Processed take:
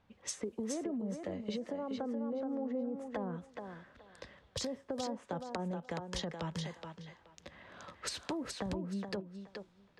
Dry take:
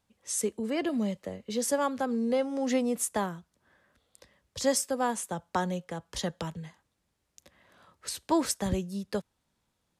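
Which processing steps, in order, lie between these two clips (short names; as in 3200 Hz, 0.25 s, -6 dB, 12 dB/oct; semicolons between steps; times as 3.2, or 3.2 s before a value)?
treble ducked by the level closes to 620 Hz, closed at -25 dBFS; limiter -26 dBFS, peak gain reduction 9.5 dB; compressor 6:1, threshold -44 dBFS, peak gain reduction 14 dB; thinning echo 0.424 s, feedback 21%, high-pass 260 Hz, level -5 dB; low-pass opened by the level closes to 2600 Hz, open at -44 dBFS; gain +7.5 dB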